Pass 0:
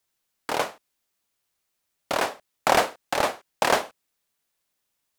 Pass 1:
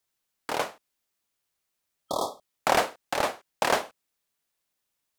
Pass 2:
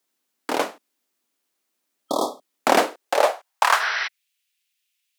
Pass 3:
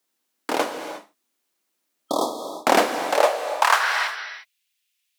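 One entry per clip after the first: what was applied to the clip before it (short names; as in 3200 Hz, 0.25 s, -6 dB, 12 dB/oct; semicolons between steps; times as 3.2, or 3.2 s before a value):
spectral repair 2.07–2.48, 1300–3200 Hz; gain -3 dB
spectral repair 3.83–4.05, 360–6000 Hz before; high-pass sweep 260 Hz -> 2600 Hz, 2.78–4.24; gain +4 dB
non-linear reverb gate 0.38 s flat, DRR 6.5 dB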